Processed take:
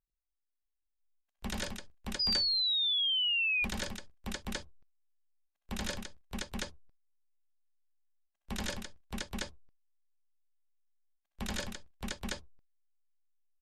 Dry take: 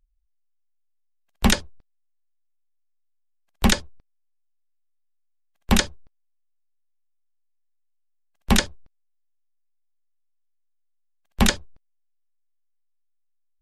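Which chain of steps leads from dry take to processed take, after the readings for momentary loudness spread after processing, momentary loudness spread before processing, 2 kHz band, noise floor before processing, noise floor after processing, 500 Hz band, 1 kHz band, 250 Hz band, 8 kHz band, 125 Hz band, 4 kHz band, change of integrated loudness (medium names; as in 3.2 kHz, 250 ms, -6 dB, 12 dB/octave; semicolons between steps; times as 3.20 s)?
18 LU, 10 LU, -5.5 dB, -69 dBFS, -85 dBFS, -11.5 dB, -14.5 dB, -15.0 dB, -13.5 dB, -15.0 dB, -0.5 dB, -10.0 dB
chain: multi-tap echo 79/98/141/260/621/826 ms -6/-3.5/-16/-17.5/-6/-5.5 dB; reverse; compression 6:1, threshold -27 dBFS, peak gain reduction 14.5 dB; reverse; painted sound fall, 2.19–3.65 s, 2.4–5 kHz -22 dBFS; spectral noise reduction 15 dB; trim -8 dB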